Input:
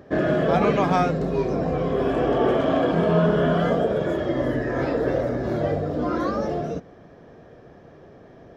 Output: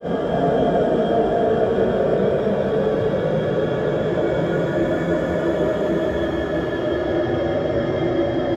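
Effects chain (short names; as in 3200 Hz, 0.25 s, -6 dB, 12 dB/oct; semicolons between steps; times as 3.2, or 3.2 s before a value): Paulstretch 16×, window 0.25 s, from 3.79; grains 0.213 s, grains 15/s, spray 11 ms, pitch spread up and down by 0 st; tapped delay 0.193/0.321 s -3.5/-5 dB; in parallel at -11.5 dB: sine folder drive 5 dB, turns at -8.5 dBFS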